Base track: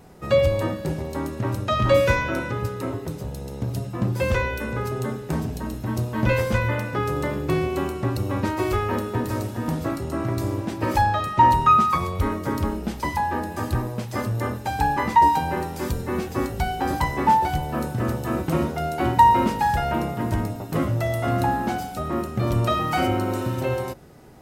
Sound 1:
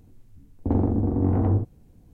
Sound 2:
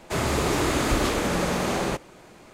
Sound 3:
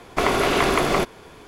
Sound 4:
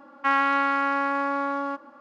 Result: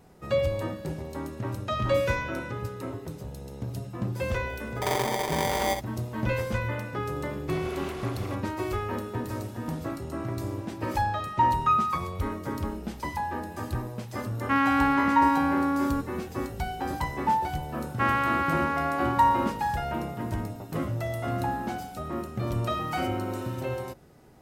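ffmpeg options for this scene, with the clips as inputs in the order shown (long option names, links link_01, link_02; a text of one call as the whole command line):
ffmpeg -i bed.wav -i cue0.wav -i cue1.wav -i cue2.wav -i cue3.wav -filter_complex "[4:a]asplit=2[link_01][link_02];[0:a]volume=-7dB[link_03];[1:a]aeval=exprs='val(0)*sgn(sin(2*PI*680*n/s))':channel_layout=same[link_04];[3:a]alimiter=limit=-11dB:level=0:latency=1:release=123[link_05];[link_01]lowshelf=frequency=320:width_type=q:width=1.5:gain=12.5[link_06];[link_04]atrim=end=2.13,asetpts=PTS-STARTPTS,volume=-6.5dB,afade=type=in:duration=0.004:curve=hsin,afade=type=out:start_time=2.126:duration=0.004:curve=hsin,adelay=4160[link_07];[link_05]atrim=end=1.47,asetpts=PTS-STARTPTS,volume=-18dB,afade=type=in:duration=0.004:curve=hsin,afade=type=out:start_time=1.466:duration=0.004:curve=hsin,adelay=7310[link_08];[link_06]atrim=end=2,asetpts=PTS-STARTPTS,volume=-2.5dB,afade=type=in:duration=0.004:curve=hsin,afade=type=out:start_time=1.996:duration=0.004:curve=hsin,adelay=14250[link_09];[link_02]atrim=end=2,asetpts=PTS-STARTPTS,volume=-3.5dB,afade=type=in:duration=0.004:curve=hsin,afade=type=out:start_time=1.996:duration=0.004:curve=hsin,adelay=17750[link_10];[link_03][link_07][link_08][link_09][link_10]amix=inputs=5:normalize=0" out.wav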